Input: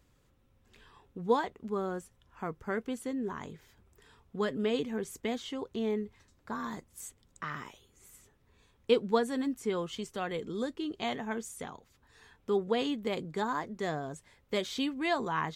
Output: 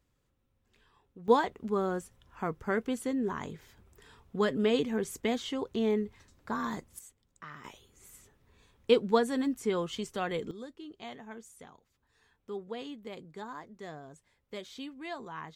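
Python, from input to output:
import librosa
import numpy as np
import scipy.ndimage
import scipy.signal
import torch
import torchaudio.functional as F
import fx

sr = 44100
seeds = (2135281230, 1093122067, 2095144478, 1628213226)

y = fx.gain(x, sr, db=fx.steps((0.0, -8.0), (1.28, 3.5), (6.99, -8.0), (7.64, 2.0), (10.51, -10.0)))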